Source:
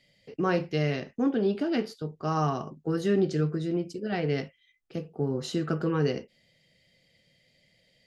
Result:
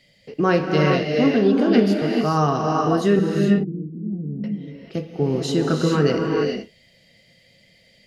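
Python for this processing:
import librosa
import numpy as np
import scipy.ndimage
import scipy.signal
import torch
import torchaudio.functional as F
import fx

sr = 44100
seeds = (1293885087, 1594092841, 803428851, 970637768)

y = fx.ladder_lowpass(x, sr, hz=260.0, resonance_pct=50, at=(3.19, 4.44))
y = fx.rev_gated(y, sr, seeds[0], gate_ms=460, shape='rising', drr_db=0.5)
y = F.gain(torch.from_numpy(y), 7.5).numpy()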